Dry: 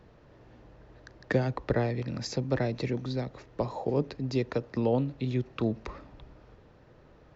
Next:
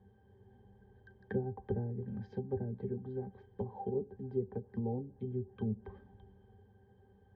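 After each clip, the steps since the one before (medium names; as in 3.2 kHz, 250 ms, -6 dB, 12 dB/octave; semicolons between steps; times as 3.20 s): low-pass that closes with the level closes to 580 Hz, closed at -25.5 dBFS; pitch-class resonator G, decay 0.11 s; trim +2 dB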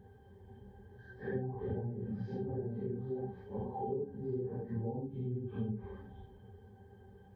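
phase randomisation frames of 200 ms; compression 2.5:1, threshold -44 dBFS, peak gain reduction 10.5 dB; trim +6.5 dB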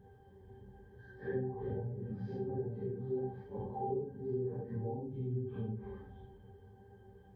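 simulated room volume 39 m³, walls mixed, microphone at 0.32 m; trim -3 dB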